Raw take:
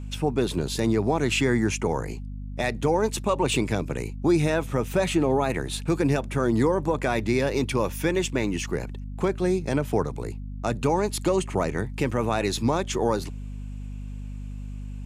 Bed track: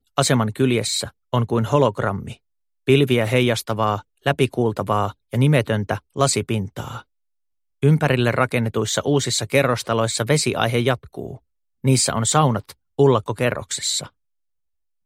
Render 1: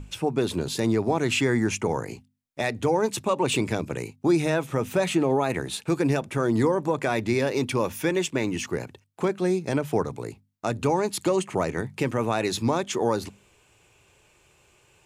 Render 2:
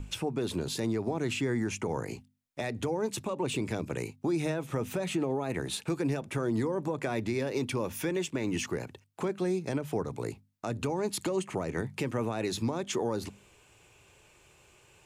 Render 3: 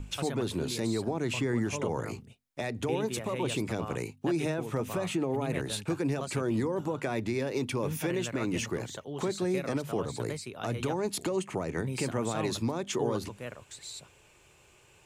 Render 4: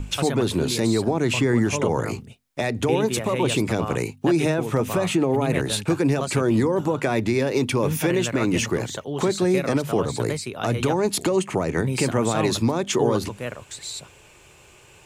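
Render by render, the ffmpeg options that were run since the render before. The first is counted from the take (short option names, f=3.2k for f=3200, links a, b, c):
-af "bandreject=f=50:t=h:w=6,bandreject=f=100:t=h:w=6,bandreject=f=150:t=h:w=6,bandreject=f=200:t=h:w=6,bandreject=f=250:t=h:w=6"
-filter_complex "[0:a]acrossover=split=490[a][b];[b]acompressor=threshold=-29dB:ratio=5[c];[a][c]amix=inputs=2:normalize=0,alimiter=limit=-21.5dB:level=0:latency=1:release=287"
-filter_complex "[1:a]volume=-20.5dB[a];[0:a][a]amix=inputs=2:normalize=0"
-af "volume=9.5dB"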